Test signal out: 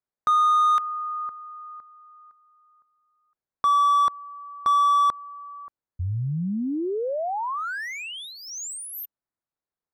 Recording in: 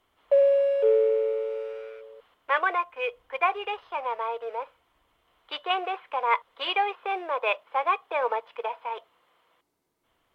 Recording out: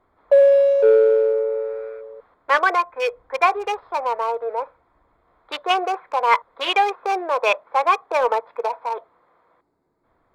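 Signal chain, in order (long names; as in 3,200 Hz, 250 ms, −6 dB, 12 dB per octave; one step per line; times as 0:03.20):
adaptive Wiener filter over 15 samples
in parallel at −4 dB: soft clipping −21 dBFS
on the sum: level +4.5 dB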